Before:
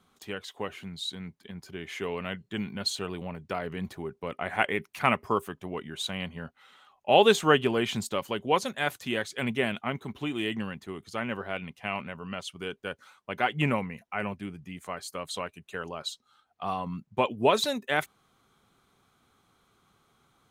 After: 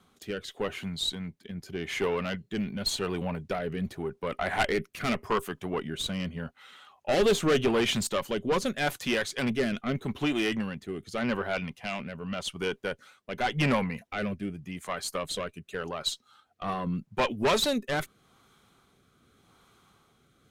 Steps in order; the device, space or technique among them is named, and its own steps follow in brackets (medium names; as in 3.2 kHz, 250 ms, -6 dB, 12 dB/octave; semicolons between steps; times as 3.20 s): overdriven rotary cabinet (valve stage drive 25 dB, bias 0.45; rotary cabinet horn 0.85 Hz); trim +8 dB